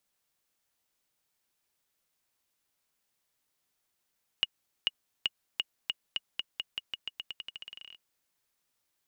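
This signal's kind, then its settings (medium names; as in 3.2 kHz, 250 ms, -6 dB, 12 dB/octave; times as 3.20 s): bouncing ball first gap 0.44 s, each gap 0.88, 2.88 kHz, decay 32 ms -12.5 dBFS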